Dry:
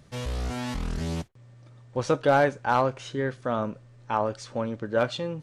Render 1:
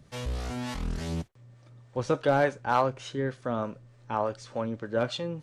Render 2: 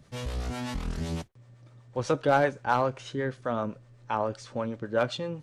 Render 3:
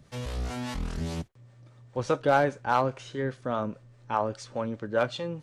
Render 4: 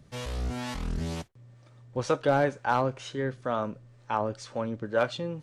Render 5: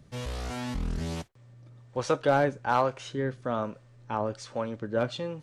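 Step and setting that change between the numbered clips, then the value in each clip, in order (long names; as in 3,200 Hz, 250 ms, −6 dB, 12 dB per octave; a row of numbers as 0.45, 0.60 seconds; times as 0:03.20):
two-band tremolo in antiphase, speed: 3.4, 7.9, 4.9, 2.1, 1.2 Hertz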